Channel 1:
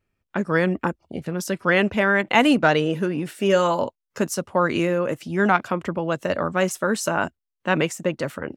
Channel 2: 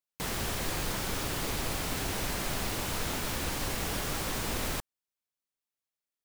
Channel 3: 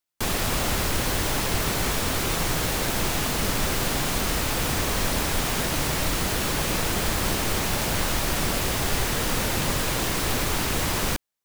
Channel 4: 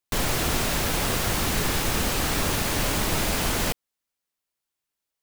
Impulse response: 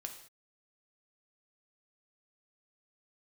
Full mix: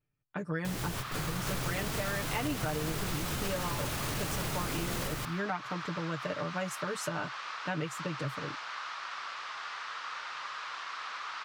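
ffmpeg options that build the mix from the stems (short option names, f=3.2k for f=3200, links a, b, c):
-filter_complex "[0:a]aecho=1:1:6.7:0.82,volume=-12.5dB,asplit=2[a][b];[1:a]adelay=450,volume=-3.5dB,asplit=2[c][d];[d]volume=-9dB[e];[2:a]highpass=f=1.2k:t=q:w=3.6,lowpass=f=5.1k:w=0.5412,lowpass=f=5.1k:w=1.3066,adelay=750,volume=-15dB[f];[3:a]alimiter=level_in=1dB:limit=-24dB:level=0:latency=1,volume=-1dB,adelay=1350,volume=2dB[g];[b]apad=whole_len=295410[h];[c][h]sidechaingate=range=-33dB:threshold=-46dB:ratio=16:detection=peak[i];[4:a]atrim=start_sample=2205[j];[e][j]afir=irnorm=-1:irlink=0[k];[a][i][f][g][k]amix=inputs=5:normalize=0,equalizer=f=130:t=o:w=0.43:g=11,acompressor=threshold=-31dB:ratio=4"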